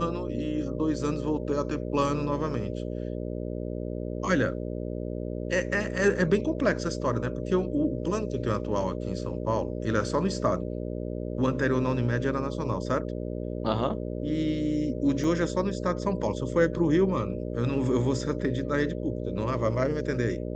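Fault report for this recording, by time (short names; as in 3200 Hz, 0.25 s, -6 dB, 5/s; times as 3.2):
buzz 60 Hz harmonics 10 -33 dBFS
15.24 gap 3.9 ms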